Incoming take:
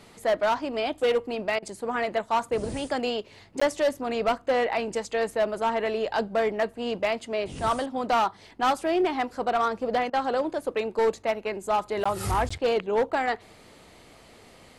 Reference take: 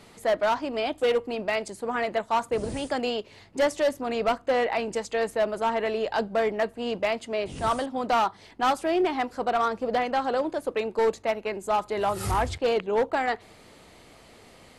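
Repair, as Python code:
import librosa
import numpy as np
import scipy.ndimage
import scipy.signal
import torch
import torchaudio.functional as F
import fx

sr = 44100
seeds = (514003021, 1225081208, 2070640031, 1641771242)

y = fx.fix_interpolate(x, sr, at_s=(3.6, 12.04, 12.49), length_ms=15.0)
y = fx.fix_interpolate(y, sr, at_s=(1.59, 10.1), length_ms=33.0)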